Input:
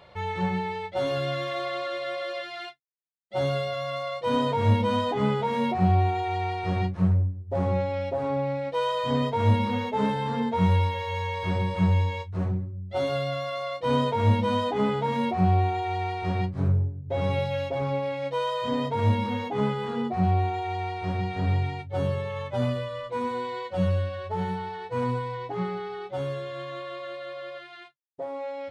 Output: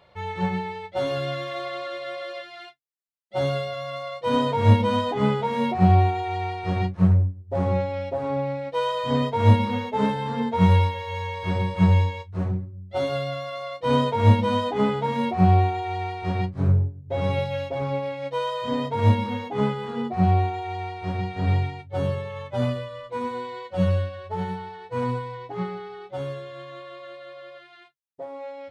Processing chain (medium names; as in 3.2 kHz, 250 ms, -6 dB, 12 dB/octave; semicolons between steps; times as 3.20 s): upward expansion 1.5:1, over -38 dBFS; trim +6 dB